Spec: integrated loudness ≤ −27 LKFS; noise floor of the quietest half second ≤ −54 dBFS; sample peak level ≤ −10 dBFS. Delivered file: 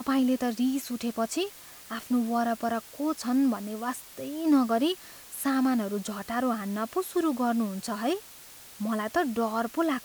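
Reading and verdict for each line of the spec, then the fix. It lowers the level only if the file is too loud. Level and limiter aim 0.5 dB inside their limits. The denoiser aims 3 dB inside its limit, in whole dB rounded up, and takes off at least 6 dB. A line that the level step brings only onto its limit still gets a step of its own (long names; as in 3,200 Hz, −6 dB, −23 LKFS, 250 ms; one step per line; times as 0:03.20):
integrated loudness −29.0 LKFS: in spec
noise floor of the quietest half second −48 dBFS: out of spec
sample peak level −13.0 dBFS: in spec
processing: broadband denoise 9 dB, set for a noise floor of −48 dBFS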